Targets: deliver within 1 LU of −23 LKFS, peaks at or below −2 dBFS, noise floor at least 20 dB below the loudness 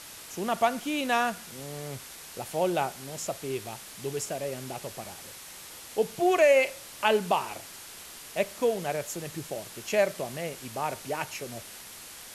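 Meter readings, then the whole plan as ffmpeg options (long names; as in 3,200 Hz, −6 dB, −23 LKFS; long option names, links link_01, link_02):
background noise floor −45 dBFS; target noise floor −50 dBFS; integrated loudness −29.5 LKFS; sample peak −9.5 dBFS; target loudness −23.0 LKFS
→ -af "afftdn=noise_reduction=6:noise_floor=-45"
-af "volume=6.5dB"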